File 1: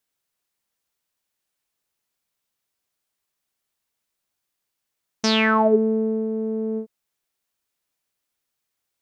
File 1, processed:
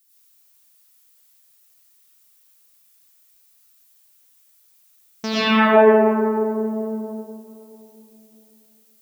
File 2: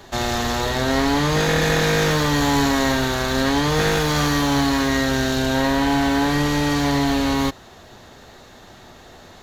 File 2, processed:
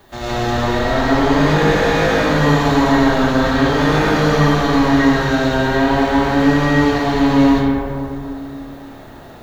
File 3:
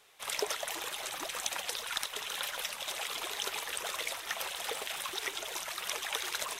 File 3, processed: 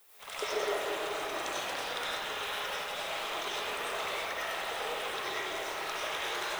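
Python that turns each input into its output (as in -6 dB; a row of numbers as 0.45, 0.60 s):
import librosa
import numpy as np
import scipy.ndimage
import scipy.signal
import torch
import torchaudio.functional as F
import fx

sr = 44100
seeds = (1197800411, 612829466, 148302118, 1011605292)

y = fx.high_shelf(x, sr, hz=5600.0, db=-11.0)
y = fx.dmg_noise_colour(y, sr, seeds[0], colour='violet', level_db=-57.0)
y = fx.rev_freeverb(y, sr, rt60_s=2.9, hf_ratio=0.3, predelay_ms=55, drr_db=-9.5)
y = y * librosa.db_to_amplitude(-5.0)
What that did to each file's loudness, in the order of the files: +3.0, +4.5, +1.0 LU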